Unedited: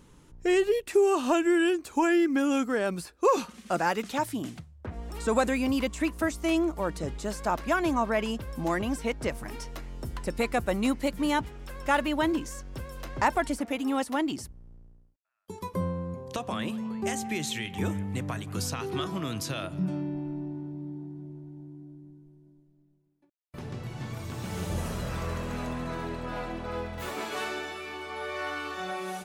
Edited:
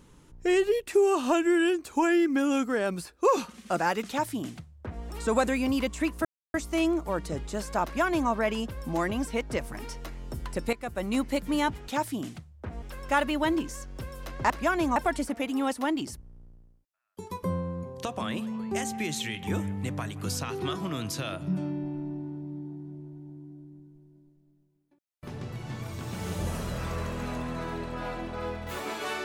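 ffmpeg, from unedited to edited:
-filter_complex "[0:a]asplit=7[a][b][c][d][e][f][g];[a]atrim=end=6.25,asetpts=PTS-STARTPTS,afade=t=out:st=6.246:d=0.004:c=hsin,apad=pad_dur=0.29[h];[b]atrim=start=6.25:end=10.44,asetpts=PTS-STARTPTS,afade=t=in:d=0.004:c=hsin,afade=t=out:st=4.186:d=0.004:c=hsin:silence=0.188365[i];[c]atrim=start=10.44:end=11.592,asetpts=PTS-STARTPTS,afade=t=in:d=0.51:silence=0.188365[j];[d]atrim=start=4.088:end=5.032[k];[e]atrim=start=11.588:end=13.272[l];[f]atrim=start=7.548:end=8.012[m];[g]atrim=start=13.268[n];[h][i][j]concat=n=3:v=0:a=1[o];[o][k]acrossfade=d=0.004:c1=hsin:c2=hsin[p];[p][l]acrossfade=d=0.004:c1=hsin:c2=hsin[q];[q][m]acrossfade=d=0.004:c1=hsin:c2=hsin[r];[r][n]acrossfade=d=0.004:c1=hsin:c2=hsin"

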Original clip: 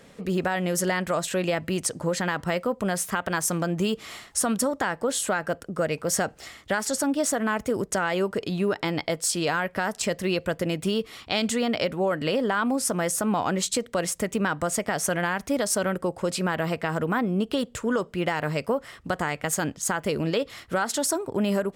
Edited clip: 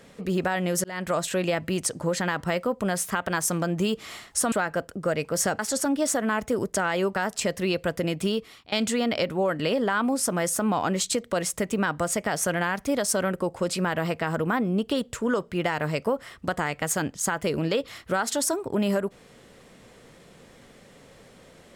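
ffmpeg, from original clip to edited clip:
-filter_complex "[0:a]asplit=6[a][b][c][d][e][f];[a]atrim=end=0.84,asetpts=PTS-STARTPTS,afade=t=out:st=0.836:d=0.004:c=hsin[g];[b]atrim=start=0.84:end=4.522,asetpts=PTS-STARTPTS,afade=t=in:d=0.25[h];[c]atrim=start=5.248:end=6.322[i];[d]atrim=start=6.768:end=8.342[j];[e]atrim=start=9.778:end=11.34,asetpts=PTS-STARTPTS,afade=t=out:st=1.142:d=0.42:silence=0.0794328[k];[f]atrim=start=11.34,asetpts=PTS-STARTPTS,afade=t=in:d=0.004:c=hsin:silence=0.0794328[l];[g][h]concat=n=2:v=0:a=1[m];[m][i]acrossfade=d=0.004:c1=hsin:c2=hsin[n];[n][j]acrossfade=d=0.004:c1=hsin:c2=hsin[o];[k][l]concat=n=2:v=0:a=1[p];[o][p]acrossfade=d=0.004:c1=hsin:c2=hsin"

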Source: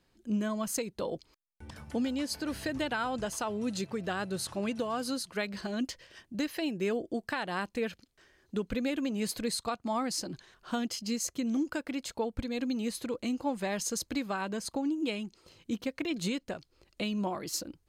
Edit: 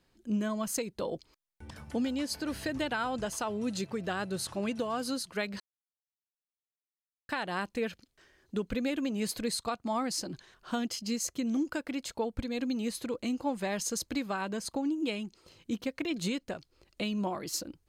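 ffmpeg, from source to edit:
-filter_complex "[0:a]asplit=3[a][b][c];[a]atrim=end=5.6,asetpts=PTS-STARTPTS,afade=t=out:st=5.596:d=0.004:c=hsin[d];[b]atrim=start=5.6:end=7.29,asetpts=PTS-STARTPTS,volume=0[e];[c]atrim=start=7.29,asetpts=PTS-STARTPTS,afade=t=in:d=0.004:c=hsin[f];[d][e][f]concat=n=3:v=0:a=1"

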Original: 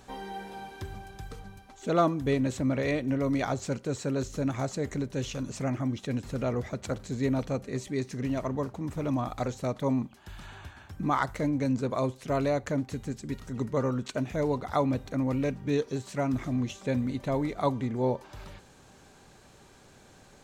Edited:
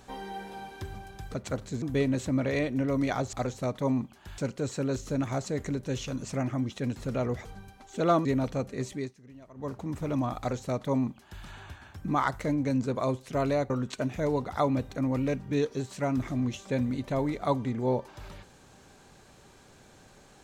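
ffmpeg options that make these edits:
-filter_complex "[0:a]asplit=10[a][b][c][d][e][f][g][h][i][j];[a]atrim=end=1.342[k];[b]atrim=start=6.718:end=7.202[l];[c]atrim=start=2.138:end=3.652[m];[d]atrim=start=9.338:end=10.392[n];[e]atrim=start=3.648:end=6.722[o];[f]atrim=start=1.338:end=2.142[p];[g]atrim=start=7.198:end=8.09,asetpts=PTS-STARTPTS,afade=t=out:st=0.612:d=0.28:c=qsin:silence=0.105925[q];[h]atrim=start=8.09:end=8.5,asetpts=PTS-STARTPTS,volume=-19.5dB[r];[i]atrim=start=8.5:end=12.652,asetpts=PTS-STARTPTS,afade=t=in:d=0.28:c=qsin:silence=0.105925[s];[j]atrim=start=13.858[t];[k][l]acrossfade=d=0.004:c1=hsin:c2=hsin[u];[u][m]acrossfade=d=0.004:c1=hsin:c2=hsin[v];[v][n]acrossfade=d=0.004:c1=hsin:c2=hsin[w];[w][o]acrossfade=d=0.004:c1=hsin:c2=hsin[x];[x][p]acrossfade=d=0.004:c1=hsin:c2=hsin[y];[q][r][s]concat=n=3:v=0:a=1[z];[y][z]acrossfade=d=0.004:c1=hsin:c2=hsin[aa];[aa][t]acrossfade=d=0.004:c1=hsin:c2=hsin"

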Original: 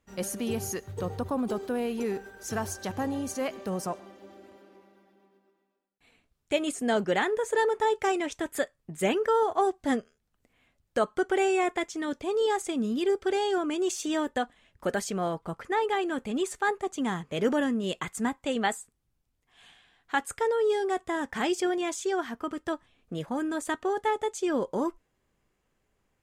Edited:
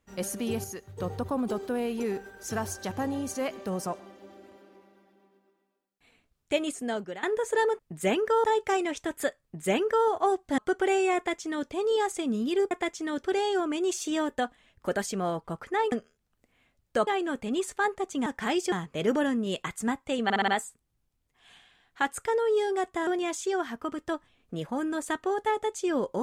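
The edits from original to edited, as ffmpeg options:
-filter_complex "[0:a]asplit=18[a][b][c][d][e][f][g][h][i][j][k][l][m][n][o][p][q][r];[a]atrim=end=0.642[s];[b]atrim=start=0.638:end=1.002,asetpts=PTS-STARTPTS,volume=-6dB[t];[c]atrim=start=0.998:end=7.23,asetpts=PTS-STARTPTS,afade=t=out:st=5.572:d=0.66:silence=0.11885[u];[d]atrim=start=7.23:end=7.792,asetpts=PTS-STARTPTS,afade=t=in:d=0.004:c=hsin:silence=0.11885[v];[e]atrim=start=8.768:end=9.422[w];[f]atrim=start=7.788:end=9.932[x];[g]atrim=start=11.078:end=13.212[y];[h]atrim=start=11.658:end=12.182[z];[i]atrim=start=13.208:end=15.902[aa];[j]atrim=start=9.928:end=11.082[ab];[k]atrim=start=15.898:end=17.092[ac];[l]atrim=start=21.198:end=21.662[ad];[m]atrim=start=17.088:end=18.672[ae];[n]atrim=start=18.608:end=18.672[af];[o]atrim=start=18.608:end=18.672[ag];[p]atrim=start=18.608:end=18.672[ah];[q]atrim=start=18.608:end=21.202[ai];[r]atrim=start=21.658[aj];[s][t]acrossfade=d=0.004:c1=hsin:c2=hsin[ak];[u][v]concat=n=2:v=0:a=1[al];[ak][al]acrossfade=d=0.004:c1=hsin:c2=hsin[am];[am][w]acrossfade=d=0.004:c1=hsin:c2=hsin[an];[an][x]acrossfade=d=0.004:c1=hsin:c2=hsin[ao];[ao][y]acrossfade=d=0.004:c1=hsin:c2=hsin[ap];[ap][z]acrossfade=d=0.004:c1=hsin:c2=hsin[aq];[aq][aa]acrossfade=d=0.004:c1=hsin:c2=hsin[ar];[ar][ab]acrossfade=d=0.004:c1=hsin:c2=hsin[as];[as][ac]acrossfade=d=0.004:c1=hsin:c2=hsin[at];[at][ad]acrossfade=d=0.004:c1=hsin:c2=hsin[au];[au][ae]acrossfade=d=0.004:c1=hsin:c2=hsin[av];[av][af]acrossfade=d=0.004:c1=hsin:c2=hsin[aw];[aw][ag]acrossfade=d=0.004:c1=hsin:c2=hsin[ax];[ax][ah]acrossfade=d=0.004:c1=hsin:c2=hsin[ay];[ay][ai]acrossfade=d=0.004:c1=hsin:c2=hsin[az];[az][aj]acrossfade=d=0.004:c1=hsin:c2=hsin"

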